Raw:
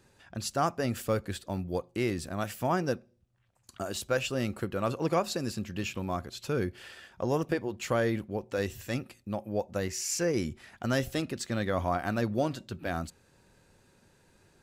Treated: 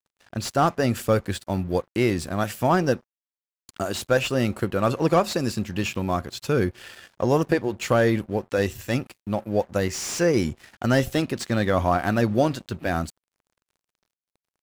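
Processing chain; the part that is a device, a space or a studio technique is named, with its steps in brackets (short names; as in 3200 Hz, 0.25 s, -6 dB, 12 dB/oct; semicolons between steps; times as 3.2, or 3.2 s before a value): early transistor amplifier (crossover distortion -54.5 dBFS; slew limiter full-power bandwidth 83 Hz); gain +8.5 dB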